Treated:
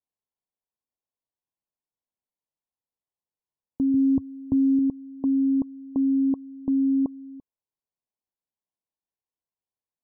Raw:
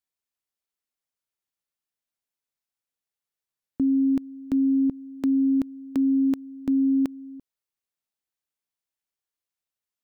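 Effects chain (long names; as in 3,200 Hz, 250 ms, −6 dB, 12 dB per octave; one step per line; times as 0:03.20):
Chebyshev low-pass filter 1,100 Hz, order 10
0:03.94–0:04.79: parametric band 91 Hz +13 dB 1.3 octaves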